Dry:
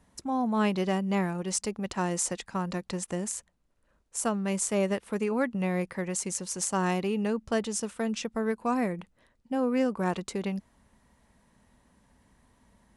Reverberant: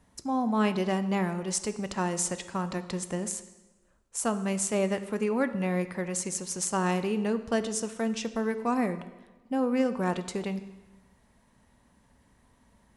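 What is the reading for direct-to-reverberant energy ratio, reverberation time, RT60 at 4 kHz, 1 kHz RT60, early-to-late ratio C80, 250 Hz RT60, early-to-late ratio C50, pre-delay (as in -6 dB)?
10.5 dB, 1.2 s, 1.0 s, 1.2 s, 14.5 dB, 1.1 s, 13.0 dB, 5 ms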